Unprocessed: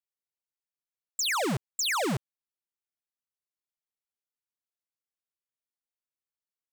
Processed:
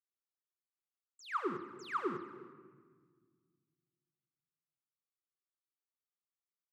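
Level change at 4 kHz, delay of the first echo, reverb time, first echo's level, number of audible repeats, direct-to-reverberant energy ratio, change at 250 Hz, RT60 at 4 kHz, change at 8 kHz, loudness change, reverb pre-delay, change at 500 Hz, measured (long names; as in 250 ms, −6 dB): −24.0 dB, 356 ms, 1.6 s, −21.5 dB, 1, 6.5 dB, −9.0 dB, 1.1 s, −31.0 dB, −11.5 dB, 4 ms, −7.5 dB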